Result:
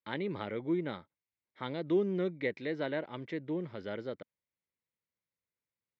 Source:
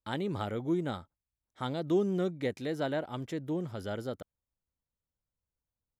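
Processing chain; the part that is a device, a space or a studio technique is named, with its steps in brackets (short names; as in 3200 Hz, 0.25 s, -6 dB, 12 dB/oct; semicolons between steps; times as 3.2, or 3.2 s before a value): kitchen radio (speaker cabinet 180–4000 Hz, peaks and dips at 250 Hz -4 dB, 740 Hz -8 dB, 1300 Hz -5 dB, 2100 Hz +8 dB, 3100 Hz -4 dB)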